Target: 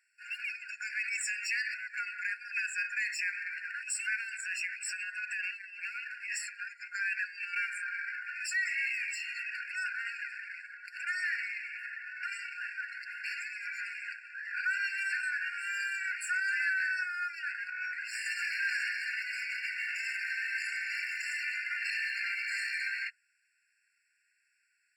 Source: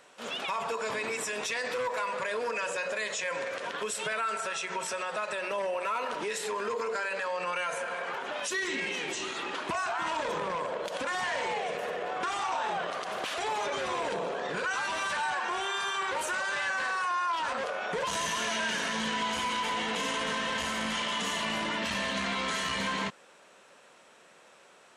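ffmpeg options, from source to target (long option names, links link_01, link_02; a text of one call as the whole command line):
ffmpeg -i in.wav -filter_complex "[0:a]afftdn=noise_reduction=17:noise_floor=-42,adynamicequalizer=threshold=0.002:dfrequency=3300:dqfactor=7.1:tfrequency=3300:tqfactor=7.1:attack=5:release=100:ratio=0.375:range=2.5:mode=boostabove:tftype=bell,asplit=2[link_01][link_02];[link_02]asoftclip=type=tanh:threshold=-36dB,volume=-5dB[link_03];[link_01][link_03]amix=inputs=2:normalize=0,afftfilt=real='re*eq(mod(floor(b*sr/1024/1400),2),1)':imag='im*eq(mod(floor(b*sr/1024/1400),2),1)':win_size=1024:overlap=0.75" out.wav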